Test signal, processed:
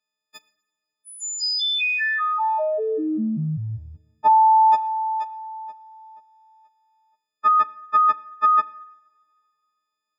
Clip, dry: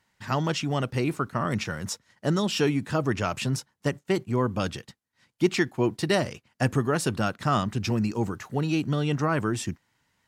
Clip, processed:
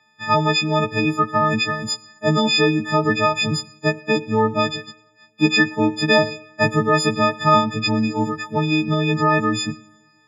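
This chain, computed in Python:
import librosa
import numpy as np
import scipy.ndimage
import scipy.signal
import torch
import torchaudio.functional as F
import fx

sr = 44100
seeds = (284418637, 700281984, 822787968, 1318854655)

y = fx.freq_snap(x, sr, grid_st=6)
y = scipy.signal.sosfilt(scipy.signal.butter(4, 120.0, 'highpass', fs=sr, output='sos'), y)
y = fx.air_absorb(y, sr, metres=170.0)
y = fx.rev_double_slope(y, sr, seeds[0], early_s=0.7, late_s=2.2, knee_db=-18, drr_db=15.5)
y = y * librosa.db_to_amplitude(6.5)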